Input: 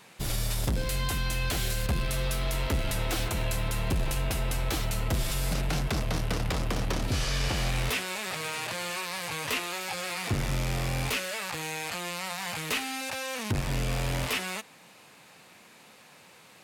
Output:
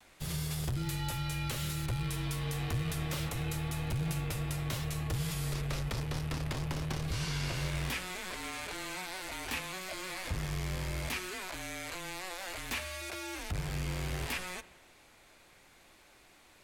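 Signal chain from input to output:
frequency shifter −190 Hz
pitch vibrato 0.32 Hz 18 cents
spring reverb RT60 1.3 s, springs 50/57 ms, DRR 16 dB
level −6.5 dB

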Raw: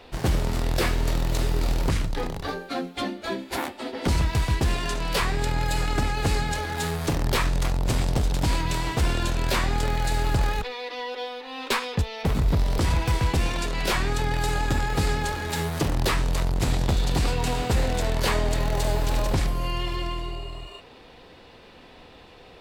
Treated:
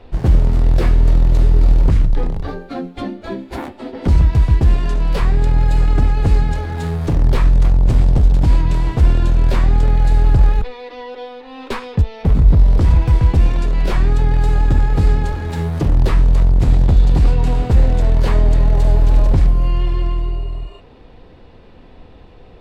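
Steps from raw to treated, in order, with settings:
spectral tilt −3 dB per octave

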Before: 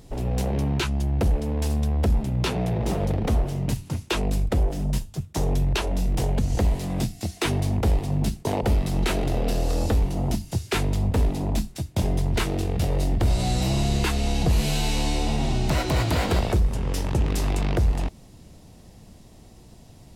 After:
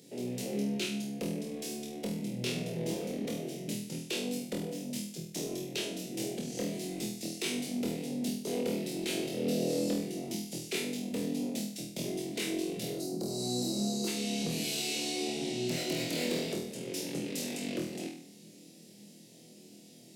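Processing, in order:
Butterworth high-pass 170 Hz 36 dB per octave
mains-hum notches 50/100/150/200/250/300/350/400/450 Hz
gain on a spectral selection 0:12.93–0:14.08, 1,400–3,800 Hz −20 dB
drawn EQ curve 480 Hz 0 dB, 1,100 Hz −22 dB, 2,200 Hz −1 dB, 5,300 Hz +2 dB
in parallel at −3 dB: downward compressor, threshold −39 dBFS, peak gain reduction 15.5 dB
on the sum: soft clipping −18 dBFS, distortion −21 dB
on a send: flutter between parallel walls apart 4.2 metres, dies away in 0.55 s
on the sum: level −8.5 dB

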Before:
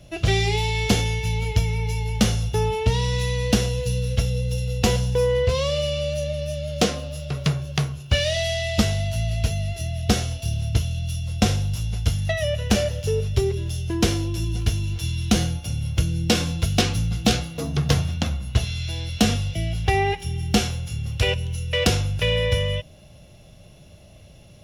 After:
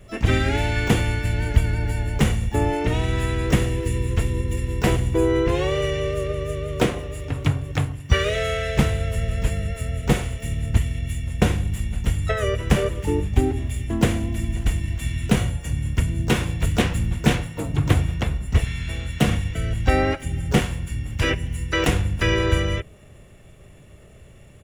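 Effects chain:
Butterworth band-reject 5,400 Hz, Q 1.2
pitch-shifted copies added −7 semitones 0 dB, −4 semitones −6 dB, +12 semitones −11 dB
level −2.5 dB

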